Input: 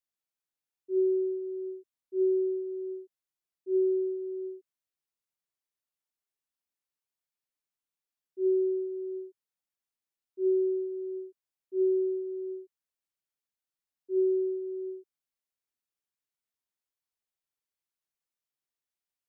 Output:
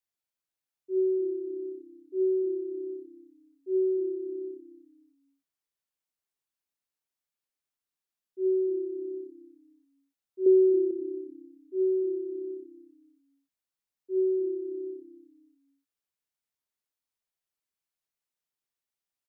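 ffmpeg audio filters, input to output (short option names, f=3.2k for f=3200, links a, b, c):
-filter_complex "[0:a]asettb=1/sr,asplit=3[a][b][c];[a]atrim=end=10.464[d];[b]atrim=start=10.46:end=10.91,asetpts=PTS-STARTPTS,afade=t=in:d=0.004:c=qsin,afade=t=out:st=0.446:d=0.004:c=qsin,equalizer=f=430:t=o:w=0.88:g=8[e];[c]atrim=start=10.906[f];[d][e]acrossfade=d=0.004:c1=hsin:c2=qsin[g];[g][f]acrossfade=d=0.004:c1=qsin:c2=hsin,asplit=2[h][i];[i]asplit=3[j][k][l];[j]adelay=272,afreqshift=-33,volume=-16dB[m];[k]adelay=544,afreqshift=-66,volume=-25.4dB[n];[l]adelay=816,afreqshift=-99,volume=-34.7dB[o];[m][n][o]amix=inputs=3:normalize=0[p];[h][p]amix=inputs=2:normalize=0"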